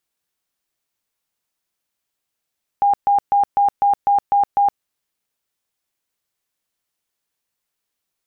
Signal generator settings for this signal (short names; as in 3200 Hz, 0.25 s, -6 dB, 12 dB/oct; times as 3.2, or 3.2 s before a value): tone bursts 808 Hz, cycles 94, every 0.25 s, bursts 8, -11.5 dBFS